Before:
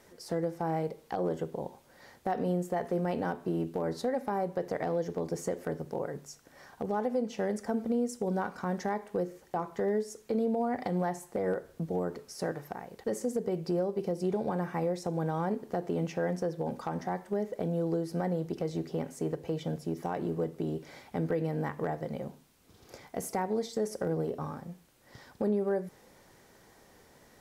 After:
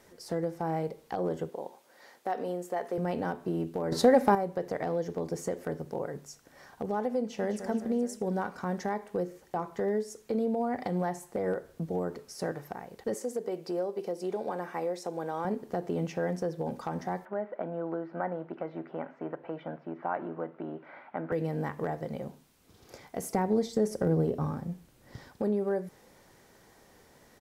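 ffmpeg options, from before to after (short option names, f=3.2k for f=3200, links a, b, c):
-filter_complex "[0:a]asettb=1/sr,asplit=3[a][b][c];[a]atrim=end=1.494[d];[b]atrim=start=1.49:end=2.98,asetpts=PTS-STARTPTS,afade=t=in:d=0.004:c=qsin,afade=t=out:st=1.486:d=0.004:c=qsin,highpass=340[e];[c]atrim=start=2.976[f];[d][e]acrossfade=d=0.004:c1=hsin:c2=qsin[g];[g][f]acrossfade=d=0.004:c1=qsin:c2=hsin,asplit=2[h][i];[i]afade=t=in:st=7.2:d=0.01,afade=t=out:st=7.62:d=0.01,aecho=0:1:210|420|630|840|1050|1260:0.334965|0.184231|0.101327|0.0557299|0.0306514|0.0168583[j];[h][j]amix=inputs=2:normalize=0,asettb=1/sr,asplit=3[k][l][m];[k]atrim=end=13.144[n];[l]atrim=start=13.14:end=15.45,asetpts=PTS-STARTPTS,afade=t=in:d=0.004:c=qsin,afade=t=out:st=2.306:d=0.004:c=qsin,highpass=330[o];[m]atrim=start=15.446[p];[n][o]acrossfade=d=0.004:c1=hsin:c2=qsin[q];[q][p]acrossfade=d=0.004:c1=qsin:c2=hsin,asettb=1/sr,asplit=3[r][s][t];[r]atrim=end=17.254[u];[s]atrim=start=17.25:end=21.32,asetpts=PTS-STARTPTS,afade=t=in:d=0.004:c=qsin,afade=t=out:st=4.066:d=0.004:c=qsin,highpass=290,equalizer=f=440:t=q:w=4:g=-9,equalizer=f=630:t=q:w=4:g=5,equalizer=f=950:t=q:w=4:g=5,equalizer=f=1.4k:t=q:w=4:g=9,lowpass=f=2.4k:w=0.5412,lowpass=f=2.4k:w=1.3066[v];[t]atrim=start=21.316[w];[u][v]acrossfade=d=0.004:c1=hsin:c2=qsin[x];[x][w]acrossfade=d=0.004:c1=qsin:c2=hsin,asettb=1/sr,asplit=3[y][z][aa];[y]atrim=end=23.344[ab];[z]atrim=start=23.34:end=25.28,asetpts=PTS-STARTPTS,afade=t=in:d=0.004:c=qsin,afade=t=out:st=1.936:d=0.004:c=qsin,lowshelf=f=330:g=9.5[ac];[aa]atrim=start=25.276[ad];[ab][ac]acrossfade=d=0.004:c1=hsin:c2=qsin[ae];[ae][ad]acrossfade=d=0.004:c1=qsin:c2=hsin,asplit=3[af][ag][ah];[af]atrim=end=3.922[ai];[ag]atrim=start=3.918:end=4.352,asetpts=PTS-STARTPTS,volume=10.5dB[aj];[ah]atrim=start=4.348[ak];[ai][aj]acrossfade=d=0.004:c1=hsin:c2=hsin[al];[al][ak]acrossfade=d=0.004:c1=hsin:c2=hsin"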